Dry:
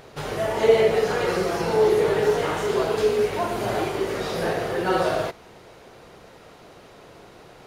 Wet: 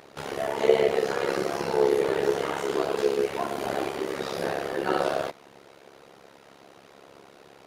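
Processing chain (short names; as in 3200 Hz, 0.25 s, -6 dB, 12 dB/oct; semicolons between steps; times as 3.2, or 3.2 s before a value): HPF 170 Hz 12 dB/oct; AM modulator 69 Hz, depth 80%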